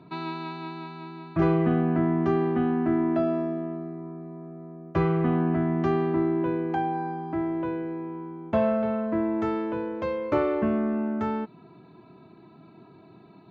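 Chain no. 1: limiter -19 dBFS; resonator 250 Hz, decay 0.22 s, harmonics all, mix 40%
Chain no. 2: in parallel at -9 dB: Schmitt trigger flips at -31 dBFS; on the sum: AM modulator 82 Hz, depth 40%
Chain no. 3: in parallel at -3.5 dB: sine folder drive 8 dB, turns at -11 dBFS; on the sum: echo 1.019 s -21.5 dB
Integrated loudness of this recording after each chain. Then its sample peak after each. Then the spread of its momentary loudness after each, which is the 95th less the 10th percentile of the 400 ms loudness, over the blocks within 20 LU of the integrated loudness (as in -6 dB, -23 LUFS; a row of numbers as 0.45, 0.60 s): -32.5, -27.5, -17.5 LUFS; -21.5, -11.5, -9.5 dBFS; 12, 14, 14 LU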